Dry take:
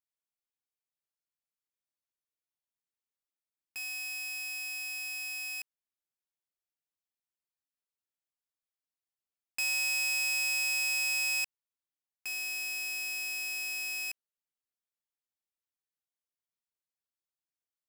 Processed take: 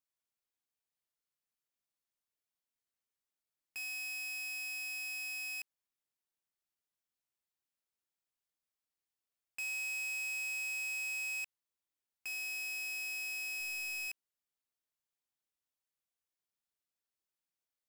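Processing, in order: 13.6–14.08 high shelf 6300 Hz +5.5 dB; soft clip -37 dBFS, distortion -8 dB

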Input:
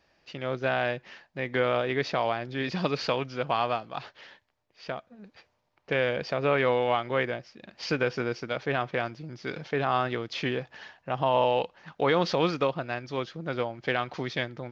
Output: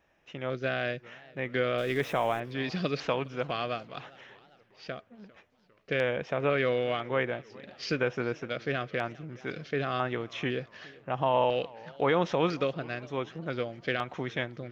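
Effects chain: 1.78–2.4 zero-crossing step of -38.5 dBFS; LFO notch square 1 Hz 900–4600 Hz; warbling echo 0.405 s, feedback 54%, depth 184 cents, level -22.5 dB; gain -1.5 dB

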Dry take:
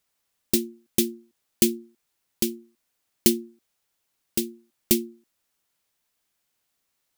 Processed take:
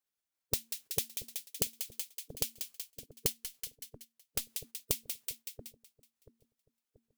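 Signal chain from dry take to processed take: spectral gate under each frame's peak -10 dB weak; split-band echo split 590 Hz, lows 0.683 s, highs 0.187 s, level -13 dB; 3.32–4.5 tube stage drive 19 dB, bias 0.7; gate -53 dBFS, range -6 dB; compressor 5:1, threshold -34 dBFS, peak gain reduction 16.5 dB; gain +3 dB

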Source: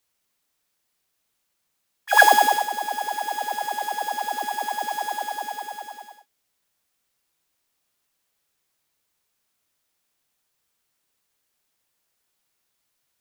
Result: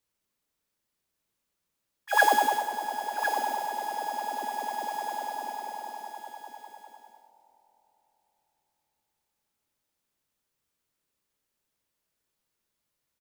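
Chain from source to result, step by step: tilt shelf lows +3.5 dB, about 700 Hz; notch 740 Hz, Q 12; echo 1.055 s -8.5 dB; Schroeder reverb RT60 3.9 s, combs from 25 ms, DRR 13 dB; gain -5 dB

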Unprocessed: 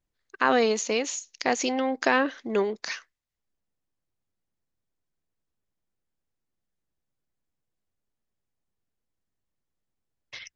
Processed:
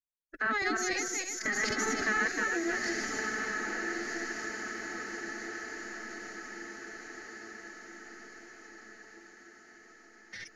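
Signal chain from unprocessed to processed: regenerating reverse delay 0.155 s, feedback 51%, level -1 dB; expander -53 dBFS; EQ curve 130 Hz 0 dB, 210 Hz +3 dB, 310 Hz -1 dB, 580 Hz -28 dB, 980 Hz -11 dB, 1900 Hz +1 dB, 2800 Hz -20 dB, 5500 Hz -5 dB; formant-preserving pitch shift +9 st; on a send: diffused feedback echo 1.315 s, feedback 50%, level -6 dB; on the sum: compressor 1.5:1, threshold -46 dBFS, peak gain reduction 9 dB; gain +4 dB

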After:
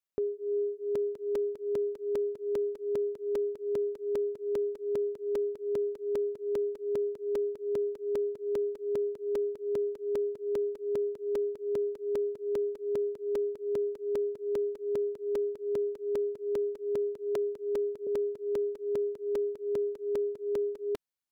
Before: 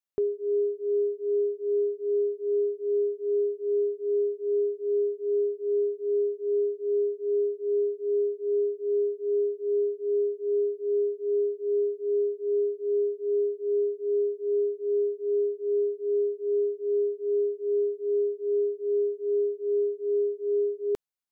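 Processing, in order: 17.35–18.07 steep high-pass 170 Hz 36 dB/oct; dynamic EQ 360 Hz, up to -6 dB, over -40 dBFS, Q 3.6; crackling interface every 0.20 s, samples 128, repeat, from 0.95; gain -1.5 dB

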